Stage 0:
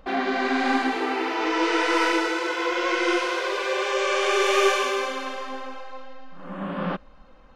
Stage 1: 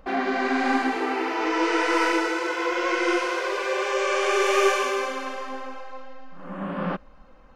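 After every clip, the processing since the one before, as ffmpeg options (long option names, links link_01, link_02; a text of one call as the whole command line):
ffmpeg -i in.wav -af "equalizer=frequency=3600:width=2.3:gain=-5.5" out.wav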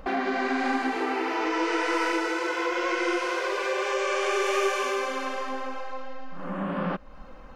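ffmpeg -i in.wav -af "acompressor=threshold=-38dB:ratio=2,volume=6.5dB" out.wav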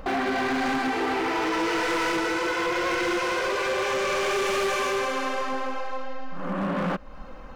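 ffmpeg -i in.wav -af "volume=26.5dB,asoftclip=hard,volume=-26.5dB,volume=4dB" out.wav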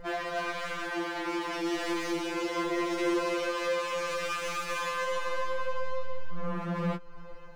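ffmpeg -i in.wav -af "asoftclip=type=hard:threshold=-25dB,afftfilt=real='re*2.83*eq(mod(b,8),0)':imag='im*2.83*eq(mod(b,8),0)':win_size=2048:overlap=0.75,volume=-3.5dB" out.wav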